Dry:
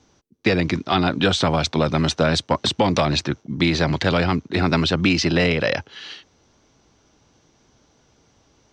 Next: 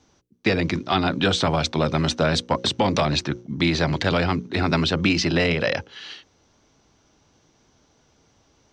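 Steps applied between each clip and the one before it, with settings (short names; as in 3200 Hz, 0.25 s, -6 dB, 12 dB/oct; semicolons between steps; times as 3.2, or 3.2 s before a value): notches 60/120/180/240/300/360/420/480/540 Hz; gain -1.5 dB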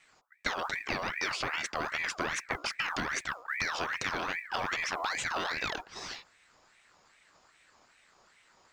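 compressor 6:1, threshold -28 dBFS, peak gain reduction 12 dB; modulation noise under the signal 34 dB; ring modulator with a swept carrier 1500 Hz, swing 45%, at 2.5 Hz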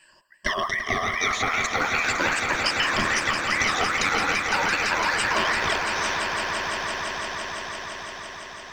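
moving spectral ripple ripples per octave 1.3, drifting +0.4 Hz, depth 20 dB; swelling echo 0.169 s, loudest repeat 5, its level -9 dB; gain +3.5 dB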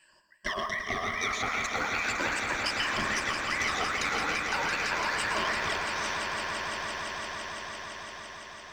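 one diode to ground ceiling -13 dBFS; on a send at -9 dB: reverb RT60 0.35 s, pre-delay 0.106 s; on the sum: gain -6 dB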